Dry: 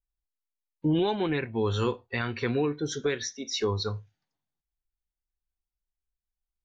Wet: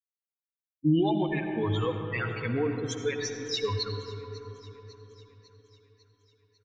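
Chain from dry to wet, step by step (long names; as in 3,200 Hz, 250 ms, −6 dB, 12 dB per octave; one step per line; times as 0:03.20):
spectral dynamics exaggerated over time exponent 3
notch filter 5,700 Hz, Q 25
comb filter 6.3 ms, depth 41%
in parallel at −2 dB: brickwall limiter −30 dBFS, peak gain reduction 13.5 dB
on the sum: delay with a high-pass on its return 549 ms, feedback 59%, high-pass 1,700 Hz, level −19.5 dB
on a send at −5 dB: convolution reverb RT60 4.2 s, pre-delay 40 ms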